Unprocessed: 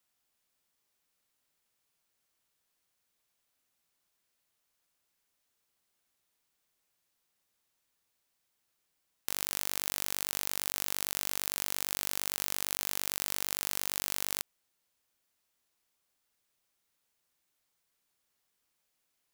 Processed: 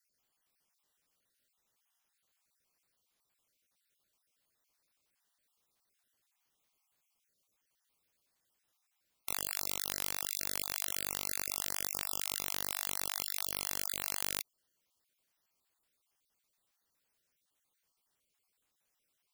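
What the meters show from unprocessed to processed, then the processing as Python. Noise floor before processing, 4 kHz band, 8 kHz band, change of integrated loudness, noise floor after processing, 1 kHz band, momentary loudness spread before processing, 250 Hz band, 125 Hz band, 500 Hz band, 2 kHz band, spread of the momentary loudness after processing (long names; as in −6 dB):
−80 dBFS, −2.5 dB, −2.5 dB, −2.5 dB, −82 dBFS, −2.0 dB, 2 LU, −2.5 dB, −2.5 dB, −2.5 dB, −2.5 dB, 1 LU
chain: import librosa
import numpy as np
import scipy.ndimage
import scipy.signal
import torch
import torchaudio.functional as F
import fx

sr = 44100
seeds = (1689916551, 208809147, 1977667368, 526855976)

y = fx.spec_dropout(x, sr, seeds[0], share_pct=37)
y = fx.rider(y, sr, range_db=10, speed_s=0.5)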